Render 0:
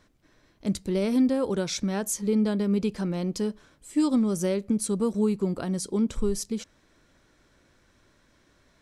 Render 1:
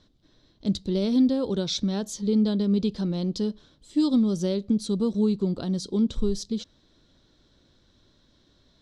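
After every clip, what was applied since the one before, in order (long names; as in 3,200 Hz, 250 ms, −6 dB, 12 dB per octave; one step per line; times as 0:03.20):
drawn EQ curve 240 Hz 0 dB, 2,400 Hz −11 dB, 3,700 Hz +7 dB, 11,000 Hz −19 dB
level +2 dB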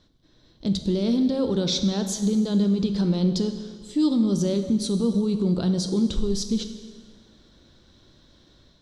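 brickwall limiter −21.5 dBFS, peak gain reduction 8.5 dB
automatic gain control gain up to 5.5 dB
dense smooth reverb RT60 1.6 s, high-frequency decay 0.9×, pre-delay 0 ms, DRR 7 dB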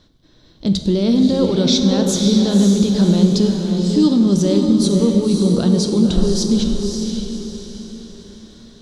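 feedback delay with all-pass diffusion 554 ms, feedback 41%, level −4 dB
level +7 dB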